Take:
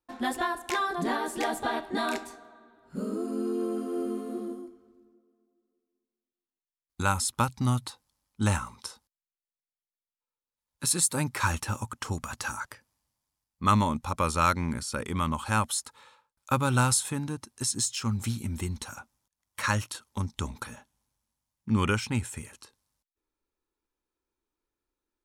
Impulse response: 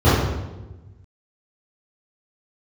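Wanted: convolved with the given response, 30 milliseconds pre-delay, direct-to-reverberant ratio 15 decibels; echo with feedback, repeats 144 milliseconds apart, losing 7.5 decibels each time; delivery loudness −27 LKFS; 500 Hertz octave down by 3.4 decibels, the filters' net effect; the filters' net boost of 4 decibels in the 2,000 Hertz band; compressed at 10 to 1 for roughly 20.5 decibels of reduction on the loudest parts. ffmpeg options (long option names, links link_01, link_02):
-filter_complex "[0:a]equalizer=frequency=500:width_type=o:gain=-5,equalizer=frequency=2000:width_type=o:gain=6,acompressor=threshold=-39dB:ratio=10,aecho=1:1:144|288|432|576|720:0.422|0.177|0.0744|0.0312|0.0131,asplit=2[link_01][link_02];[1:a]atrim=start_sample=2205,adelay=30[link_03];[link_02][link_03]afir=irnorm=-1:irlink=0,volume=-40dB[link_04];[link_01][link_04]amix=inputs=2:normalize=0,volume=15dB"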